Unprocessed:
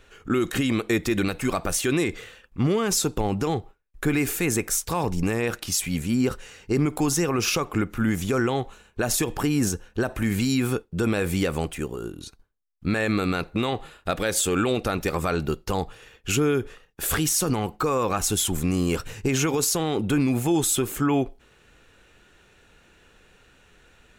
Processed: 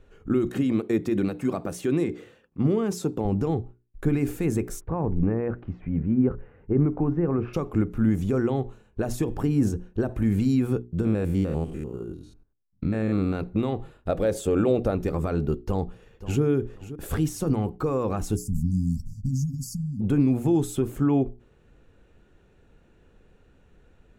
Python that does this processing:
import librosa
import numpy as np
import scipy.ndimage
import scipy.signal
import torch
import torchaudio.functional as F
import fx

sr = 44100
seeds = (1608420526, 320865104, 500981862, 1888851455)

y = fx.highpass(x, sr, hz=140.0, slope=12, at=(0.5, 3.25))
y = fx.lowpass(y, sr, hz=1900.0, slope=24, at=(4.79, 7.53), fade=0.02)
y = fx.spec_steps(y, sr, hold_ms=100, at=(11.0, 13.34), fade=0.02)
y = fx.peak_eq(y, sr, hz=560.0, db=7.0, octaves=0.77, at=(14.09, 14.96))
y = fx.echo_throw(y, sr, start_s=15.56, length_s=0.86, ms=530, feedback_pct=25, wet_db=-14.0)
y = fx.brickwall_bandstop(y, sr, low_hz=260.0, high_hz=4400.0, at=(18.35, 20.0), fade=0.02)
y = fx.tilt_shelf(y, sr, db=9.5, hz=860.0)
y = fx.hum_notches(y, sr, base_hz=60, count=7)
y = y * librosa.db_to_amplitude(-6.0)